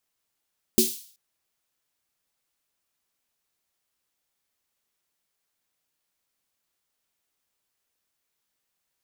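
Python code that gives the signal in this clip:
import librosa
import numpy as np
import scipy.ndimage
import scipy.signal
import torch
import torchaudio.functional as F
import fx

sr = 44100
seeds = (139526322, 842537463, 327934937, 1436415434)

y = fx.drum_snare(sr, seeds[0], length_s=0.38, hz=230.0, second_hz=370.0, noise_db=-2, noise_from_hz=3400.0, decay_s=0.21, noise_decay_s=0.5)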